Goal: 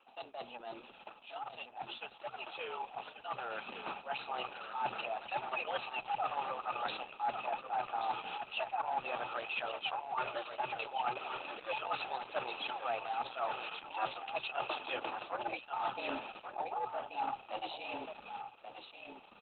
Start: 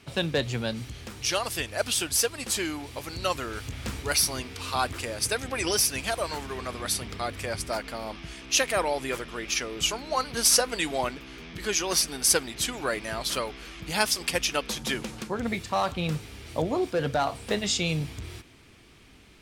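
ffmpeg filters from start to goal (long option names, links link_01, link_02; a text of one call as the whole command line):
ffmpeg -i in.wav -filter_complex "[0:a]asplit=3[link_01][link_02][link_03];[link_01]bandpass=frequency=730:width_type=q:width=8,volume=0dB[link_04];[link_02]bandpass=frequency=1090:width_type=q:width=8,volume=-6dB[link_05];[link_03]bandpass=frequency=2440:width_type=q:width=8,volume=-9dB[link_06];[link_04][link_05][link_06]amix=inputs=3:normalize=0,areverse,acompressor=threshold=-48dB:ratio=16,areverse,aeval=exprs='clip(val(0),-1,0.00473)':channel_layout=same,dynaudnorm=framelen=770:gausssize=9:maxgain=8dB,afreqshift=120,highpass=130,lowpass=7900,asplit=2[link_07][link_08];[link_08]aecho=0:1:1131:0.398[link_09];[link_07][link_09]amix=inputs=2:normalize=0,volume=9dB" -ar 48000 -c:a libopus -b:a 8k out.opus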